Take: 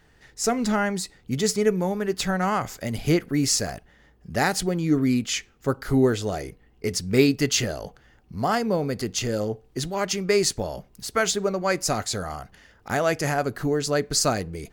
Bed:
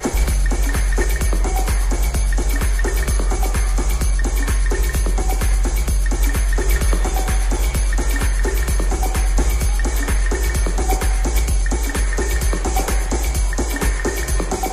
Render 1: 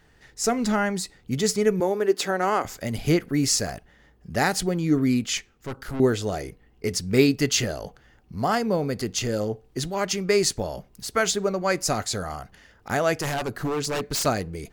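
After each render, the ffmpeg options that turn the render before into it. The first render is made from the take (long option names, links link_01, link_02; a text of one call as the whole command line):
ffmpeg -i in.wav -filter_complex "[0:a]asettb=1/sr,asplit=3[link_01][link_02][link_03];[link_01]atrim=end=1.804[link_04];[link_02]atrim=start=1.8:end=2.65,asetpts=PTS-STARTPTS,afade=type=in:duration=0.004:curve=qsin,afade=type=out:start_time=0.846:duration=0.004:curve=qsin,highpass=frequency=350:width_type=q:width=1.9[link_05];[link_03]atrim=start=2.646[link_06];[link_04][link_05]acrossfade=duration=0.004:curve1=hsin:curve2=qsin[link_07];[link_07][link_06]acrossfade=duration=0.004:curve1=qsin:curve2=hsin,asettb=1/sr,asplit=3[link_08][link_09][link_10];[link_08]atrim=end=5.374[link_11];[link_09]atrim=start=5.37:end=6,asetpts=PTS-STARTPTS,afade=type=in:duration=0.004:curve=qsin,afade=type=out:start_time=0.626:duration=0.004:curve=qsin,aeval=exprs='(tanh(28.2*val(0)+0.55)-tanh(0.55))/28.2':channel_layout=same[link_12];[link_10]atrim=start=5.996[link_13];[link_11][link_12]acrossfade=duration=0.004:curve1=hsin:curve2=qsin[link_14];[link_14][link_13]acrossfade=duration=0.004:curve1=qsin:curve2=hsin,asettb=1/sr,asplit=3[link_15][link_16][link_17];[link_15]atrim=end=13.174[link_18];[link_16]atrim=start=13.17:end=14.26,asetpts=PTS-STARTPTS,afade=type=in:duration=0.004:curve=qsin,afade=type=out:start_time=1.086:duration=0.004:curve=qsin,aeval=exprs='0.0891*(abs(mod(val(0)/0.0891+3,4)-2)-1)':channel_layout=same[link_19];[link_17]atrim=start=14.256[link_20];[link_18][link_19]acrossfade=duration=0.004:curve1=hsin:curve2=qsin[link_21];[link_21][link_20]acrossfade=duration=0.004:curve1=qsin:curve2=hsin" out.wav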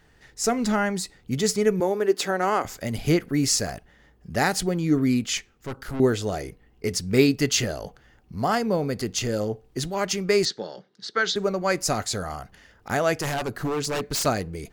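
ffmpeg -i in.wav -filter_complex "[0:a]asettb=1/sr,asplit=3[link_01][link_02][link_03];[link_01]atrim=end=10.454[link_04];[link_02]atrim=start=10.45:end=11.36,asetpts=PTS-STARTPTS,afade=type=in:duration=0.004:curve=qsin,afade=type=out:start_time=0.906:duration=0.004:curve=qsin,highpass=frequency=200:width=0.5412,highpass=frequency=200:width=1.3066,equalizer=frequency=260:width_type=q:width=4:gain=-10,equalizer=frequency=660:width_type=q:width=4:gain=-10,equalizer=frequency=1000:width_type=q:width=4:gain=-7,equalizer=frequency=1600:width_type=q:width=4:gain=5,equalizer=frequency=2500:width_type=q:width=4:gain=-10,equalizer=frequency=3800:width_type=q:width=4:gain=7,lowpass=frequency=5200:width=0.5412,lowpass=frequency=5200:width=1.3066[link_05];[link_03]atrim=start=11.356[link_06];[link_04][link_05]acrossfade=duration=0.004:curve1=hsin:curve2=qsin[link_07];[link_07][link_06]acrossfade=duration=0.004:curve1=qsin:curve2=hsin" out.wav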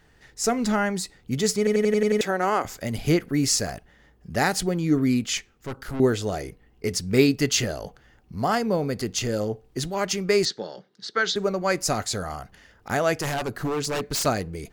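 ffmpeg -i in.wav -filter_complex "[0:a]asplit=8[link_01][link_02][link_03][link_04][link_05][link_06][link_07][link_08];[link_01]atrim=end=1.672[link_09];[link_02]atrim=start=1.578:end=1.672[link_10];[link_03]atrim=start=1.578:end=1.672[link_11];[link_04]atrim=start=1.578:end=1.672[link_12];[link_05]atrim=start=1.578:end=1.672[link_13];[link_06]atrim=start=1.578:end=1.672[link_14];[link_07]atrim=start=1.578:end=1.672[link_15];[link_08]atrim=start=2.208[link_16];[link_09][link_10]acrossfade=duration=0.004:curve1=hsin:curve2=hsin[link_17];[link_17][link_11]acrossfade=duration=0.004:curve1=hsin:curve2=hsin[link_18];[link_18][link_12]acrossfade=duration=0.004:curve1=hsin:curve2=hsin[link_19];[link_19][link_13]acrossfade=duration=0.004:curve1=hsin:curve2=hsin[link_20];[link_20][link_14]acrossfade=duration=0.004:curve1=hsin:curve2=hsin[link_21];[link_21][link_15]acrossfade=duration=0.004:curve1=hsin:curve2=hsin[link_22];[link_22][link_16]acrossfade=duration=0.004:curve1=hsin:curve2=hsin" out.wav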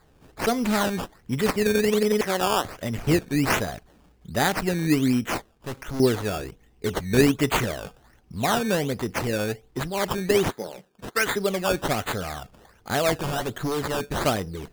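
ffmpeg -i in.wav -af "acrusher=samples=15:mix=1:aa=0.000001:lfo=1:lforange=15:lforate=1.3" out.wav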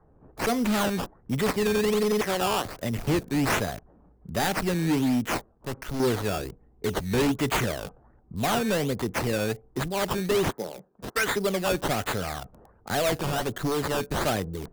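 ffmpeg -i in.wav -filter_complex "[0:a]acrossover=split=150|1300[link_01][link_02][link_03];[link_03]acrusher=bits=6:mix=0:aa=0.000001[link_04];[link_01][link_02][link_04]amix=inputs=3:normalize=0,volume=20dB,asoftclip=hard,volume=-20dB" out.wav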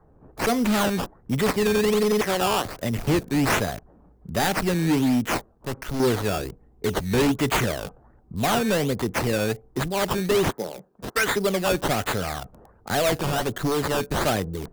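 ffmpeg -i in.wav -af "volume=3dB" out.wav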